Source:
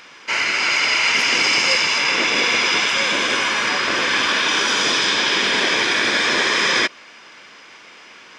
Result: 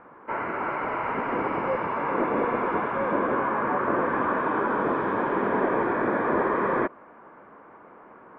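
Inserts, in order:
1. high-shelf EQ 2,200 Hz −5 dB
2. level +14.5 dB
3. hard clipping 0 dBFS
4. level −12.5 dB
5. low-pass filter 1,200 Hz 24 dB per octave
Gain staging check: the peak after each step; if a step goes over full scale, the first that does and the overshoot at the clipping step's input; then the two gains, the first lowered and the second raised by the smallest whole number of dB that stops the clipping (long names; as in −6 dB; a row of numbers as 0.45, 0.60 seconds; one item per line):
−7.5, +7.0, 0.0, −12.5, −12.0 dBFS
step 2, 7.0 dB
step 2 +7.5 dB, step 4 −5.5 dB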